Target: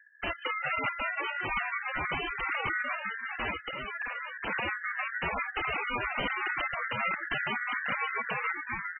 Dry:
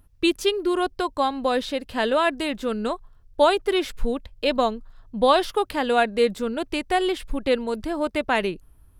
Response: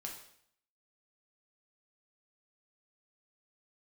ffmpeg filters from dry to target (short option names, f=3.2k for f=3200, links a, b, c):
-filter_complex "[0:a]asettb=1/sr,asplit=3[a][b][c];[a]atrim=end=2.264[d];[b]atrim=start=2.26:end=2.68,asetpts=PTS-STARTPTS,afade=t=in:d=0.004:c=qsin,afade=t=out:st=0.416:d=0.004:c=qsin,equalizer=f=89:w=2.1:g=5.5[e];[c]atrim=start=2.676[f];[d][e]acrossfade=d=0.004:c1=hsin:c2=qsin[g];[g][f]acrossfade=d=0.004:c1=qsin:c2=hsin,asettb=1/sr,asplit=3[h][i][j];[h]atrim=end=7.314[k];[i]atrim=start=7.31:end=7.99,asetpts=PTS-STARTPTS,afade=t=in:d=0.004:c=qsin,afade=t=out:st=0.676:d=0.004:c=qsin,acrossover=split=4800[l][m];[m]acompressor=threshold=-53dB:ratio=4:attack=1:release=60[n];[l][n]amix=inputs=2:normalize=0[o];[j]atrim=start=7.986[p];[k][o]acrossfade=d=0.004:c1=hsin:c2=qsin[q];[q][p]acrossfade=d=0.004:c1=qsin:c2=hsin,bandreject=f=50:t=h:w=6,bandreject=f=100:t=h:w=6,bandreject=f=150:t=h:w=6,bandreject=f=200:t=h:w=6,bandreject=f=250:t=h:w=6,bandreject=f=300:t=h:w=6,asplit=6[r][s][t][u][v][w];[s]adelay=401,afreqshift=-98,volume=-7.5dB[x];[t]adelay=802,afreqshift=-196,volume=-14.1dB[y];[u]adelay=1203,afreqshift=-294,volume=-20.6dB[z];[v]adelay=1604,afreqshift=-392,volume=-27.2dB[aa];[w]adelay=2005,afreqshift=-490,volume=-33.7dB[ab];[r][x][y][z][aa][ab]amix=inputs=6:normalize=0,acrossover=split=300[ac][ad];[ac]aeval=exprs='clip(val(0),-1,0.0668)':c=same[ae];[ad]flanger=delay=8:depth=9.6:regen=-63:speed=0.48:shape=sinusoidal[af];[ae][af]amix=inputs=2:normalize=0,aeval=exprs='val(0)*sin(2*PI*1700*n/s)':c=same,aeval=exprs='(mod(11.2*val(0)+1,2)-1)/11.2':c=same,asplit=3[ag][ah][ai];[ag]afade=t=out:st=3.53:d=0.02[aj];[ah]acompressor=threshold=-36dB:ratio=2,afade=t=in:st=3.53:d=0.02,afade=t=out:st=4.46:d=0.02[ak];[ai]afade=t=in:st=4.46:d=0.02[al];[aj][ak][al]amix=inputs=3:normalize=0" -ar 22050 -c:a libmp3lame -b:a 8k